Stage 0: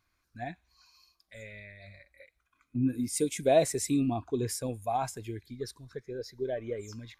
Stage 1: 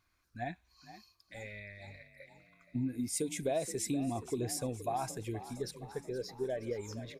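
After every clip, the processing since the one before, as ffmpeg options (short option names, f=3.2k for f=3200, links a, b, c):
-filter_complex "[0:a]acompressor=threshold=-32dB:ratio=4,asplit=7[a][b][c][d][e][f][g];[b]adelay=472,afreqshift=37,volume=-14.5dB[h];[c]adelay=944,afreqshift=74,volume=-18.8dB[i];[d]adelay=1416,afreqshift=111,volume=-23.1dB[j];[e]adelay=1888,afreqshift=148,volume=-27.4dB[k];[f]adelay=2360,afreqshift=185,volume=-31.7dB[l];[g]adelay=2832,afreqshift=222,volume=-36dB[m];[a][h][i][j][k][l][m]amix=inputs=7:normalize=0"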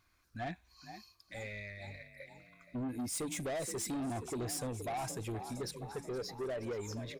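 -af "asoftclip=type=tanh:threshold=-38dB,volume=3.5dB"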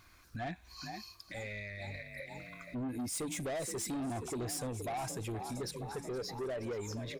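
-filter_complex "[0:a]asplit=2[a][b];[b]acompressor=threshold=-47dB:ratio=6,volume=1dB[c];[a][c]amix=inputs=2:normalize=0,alimiter=level_in=15.5dB:limit=-24dB:level=0:latency=1:release=195,volume=-15.5dB,volume=5dB"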